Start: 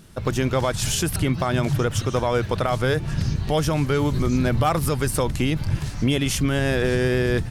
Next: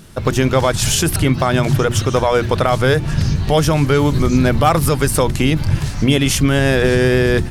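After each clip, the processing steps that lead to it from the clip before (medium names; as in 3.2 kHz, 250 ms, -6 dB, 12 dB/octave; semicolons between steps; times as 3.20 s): hum notches 60/120/180/240/300/360 Hz; trim +7.5 dB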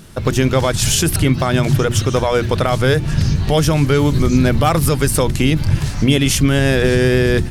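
dynamic bell 920 Hz, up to -4 dB, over -29 dBFS, Q 0.75; trim +1 dB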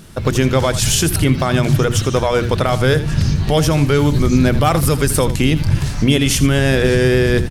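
delay 82 ms -14 dB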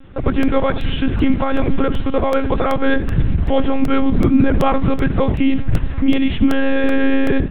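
monotone LPC vocoder at 8 kHz 270 Hz; distance through air 400 m; crackling interface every 0.38 s, samples 64, repeat, from 0.43 s; trim +1 dB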